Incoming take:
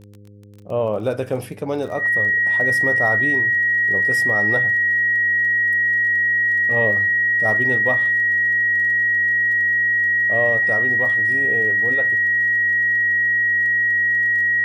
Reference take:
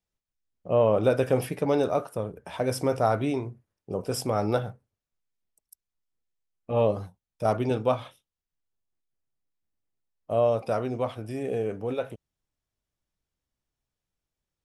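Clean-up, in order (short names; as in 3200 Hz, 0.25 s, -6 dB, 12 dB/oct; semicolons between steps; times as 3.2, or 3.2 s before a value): de-click; de-hum 102.3 Hz, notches 5; notch 1900 Hz, Q 30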